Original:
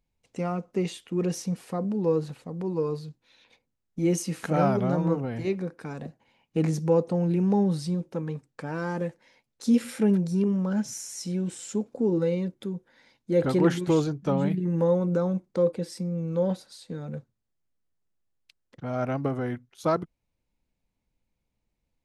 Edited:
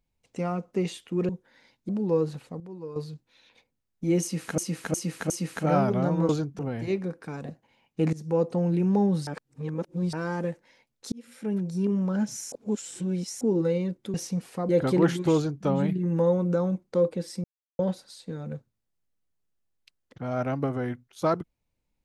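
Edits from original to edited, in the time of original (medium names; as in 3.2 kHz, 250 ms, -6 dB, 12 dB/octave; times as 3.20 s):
1.29–1.84 s: swap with 12.71–13.31 s
2.55–2.91 s: gain -11 dB
4.17–4.53 s: loop, 4 plays
6.70–7.18 s: fade in equal-power, from -18.5 dB
7.84–8.70 s: reverse
9.69–10.58 s: fade in linear
11.09–11.98 s: reverse
13.97–14.27 s: copy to 5.16 s
16.06–16.41 s: mute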